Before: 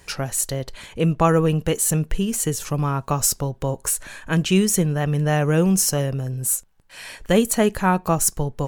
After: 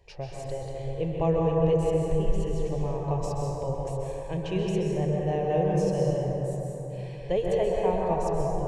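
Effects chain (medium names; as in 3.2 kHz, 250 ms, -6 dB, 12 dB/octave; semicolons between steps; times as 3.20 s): tape spacing loss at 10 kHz 30 dB; static phaser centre 570 Hz, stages 4; plate-style reverb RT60 3.7 s, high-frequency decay 0.35×, pre-delay 115 ms, DRR -3.5 dB; trim -5 dB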